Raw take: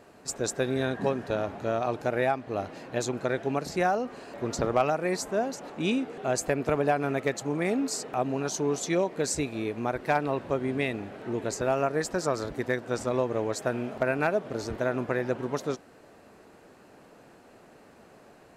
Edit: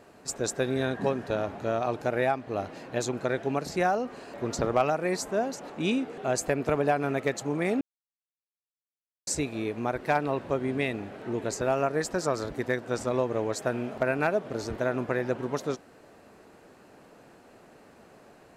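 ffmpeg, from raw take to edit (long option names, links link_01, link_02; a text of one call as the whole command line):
ffmpeg -i in.wav -filter_complex "[0:a]asplit=3[link_01][link_02][link_03];[link_01]atrim=end=7.81,asetpts=PTS-STARTPTS,afade=type=out:start_time=7.806:duration=0.004:curve=hsin[link_04];[link_02]atrim=start=7.81:end=9.27,asetpts=PTS-STARTPTS,volume=0[link_05];[link_03]atrim=start=9.27,asetpts=PTS-STARTPTS,afade=type=in:duration=0.004:curve=hsin[link_06];[link_04][link_05][link_06]concat=n=3:v=0:a=1" out.wav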